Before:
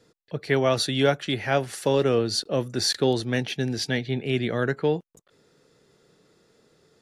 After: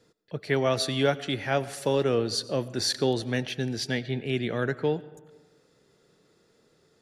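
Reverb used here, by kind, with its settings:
comb and all-pass reverb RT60 1.3 s, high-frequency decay 0.5×, pre-delay 55 ms, DRR 17 dB
level −3 dB

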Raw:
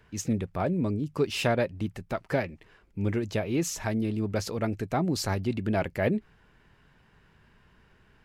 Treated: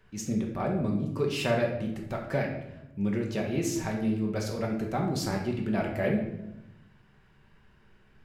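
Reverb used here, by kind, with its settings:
rectangular room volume 310 cubic metres, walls mixed, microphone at 1.1 metres
level −4.5 dB

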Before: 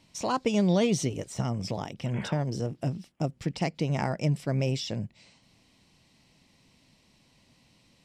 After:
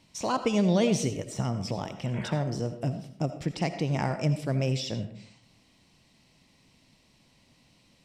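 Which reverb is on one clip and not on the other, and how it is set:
comb and all-pass reverb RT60 0.6 s, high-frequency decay 0.6×, pre-delay 40 ms, DRR 9.5 dB

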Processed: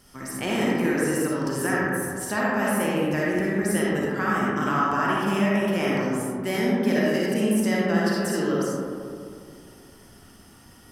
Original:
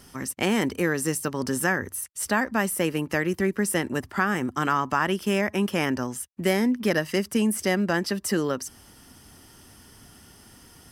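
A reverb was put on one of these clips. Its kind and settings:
comb and all-pass reverb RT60 2.3 s, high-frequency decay 0.3×, pre-delay 15 ms, DRR −6 dB
level −6 dB

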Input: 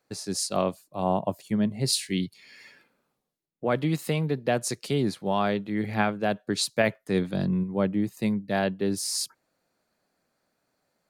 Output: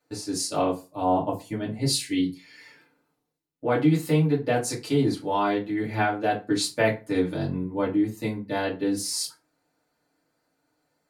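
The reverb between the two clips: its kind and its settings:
feedback delay network reverb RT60 0.3 s, low-frequency decay 1×, high-frequency decay 0.7×, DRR −6 dB
level −5.5 dB

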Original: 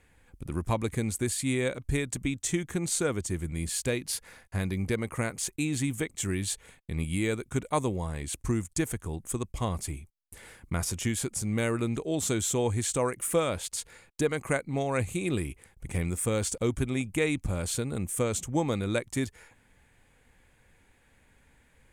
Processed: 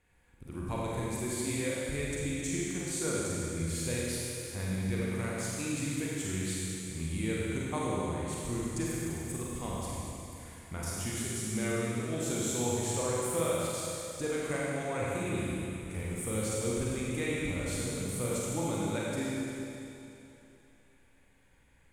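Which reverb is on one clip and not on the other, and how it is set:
four-comb reverb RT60 2.9 s, combs from 33 ms, DRR −6 dB
level −10 dB

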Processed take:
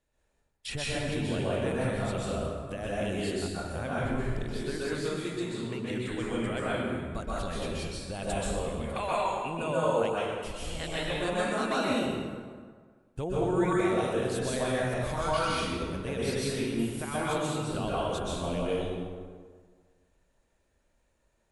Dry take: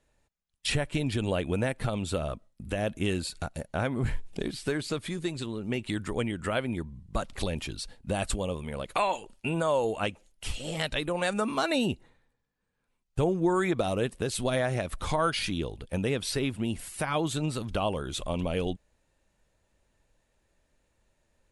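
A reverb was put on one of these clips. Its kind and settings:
dense smooth reverb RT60 1.7 s, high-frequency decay 0.6×, pre-delay 115 ms, DRR −7.5 dB
level −8.5 dB

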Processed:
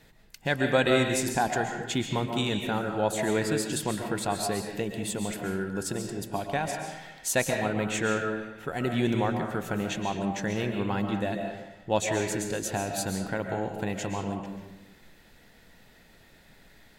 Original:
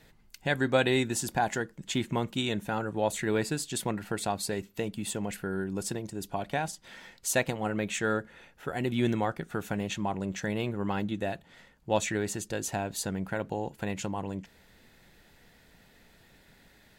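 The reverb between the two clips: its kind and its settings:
comb and all-pass reverb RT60 0.99 s, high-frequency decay 0.7×, pre-delay 95 ms, DRR 3.5 dB
level +1 dB

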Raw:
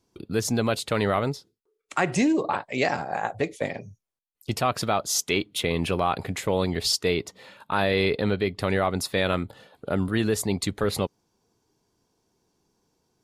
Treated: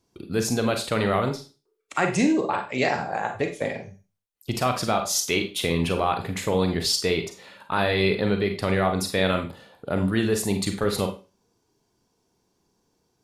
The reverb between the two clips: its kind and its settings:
four-comb reverb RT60 0.32 s, combs from 32 ms, DRR 5 dB

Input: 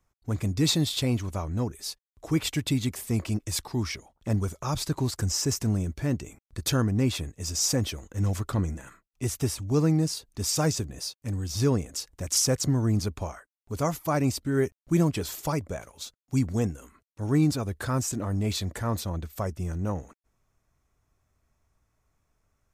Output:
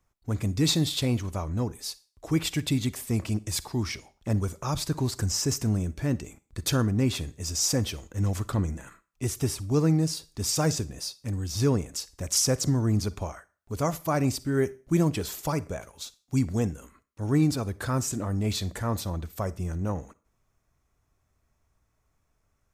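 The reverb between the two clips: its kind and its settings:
four-comb reverb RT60 0.37 s, DRR 18.5 dB

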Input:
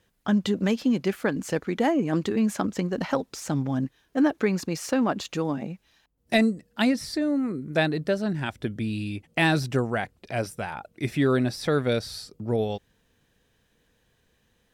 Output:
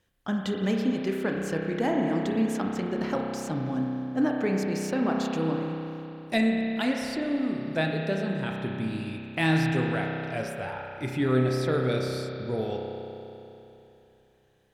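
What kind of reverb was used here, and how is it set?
spring reverb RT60 3.1 s, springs 31 ms, chirp 30 ms, DRR 0 dB
level −5 dB

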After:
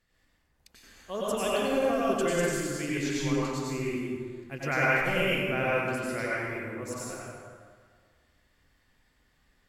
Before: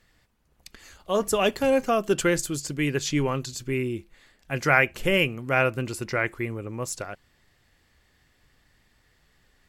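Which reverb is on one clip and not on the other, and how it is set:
dense smooth reverb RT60 1.8 s, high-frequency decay 0.6×, pre-delay 80 ms, DRR −7 dB
level −11.5 dB

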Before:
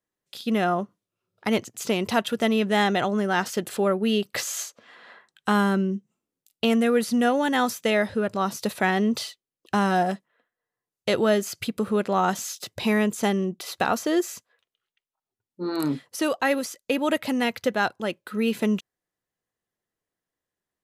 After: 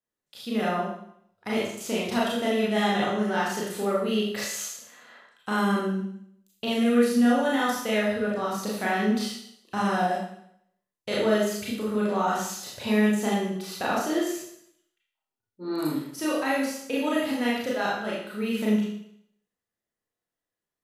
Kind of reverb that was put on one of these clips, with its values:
four-comb reverb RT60 0.69 s, combs from 26 ms, DRR −6 dB
level −9 dB

